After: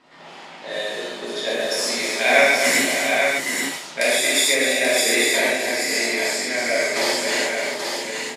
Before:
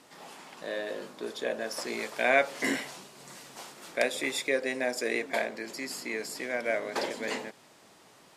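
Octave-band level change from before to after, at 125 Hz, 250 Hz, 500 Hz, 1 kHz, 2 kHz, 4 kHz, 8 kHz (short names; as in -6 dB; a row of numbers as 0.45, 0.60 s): +8.0, +8.5, +9.5, +10.0, +13.0, +17.0, +19.0 dB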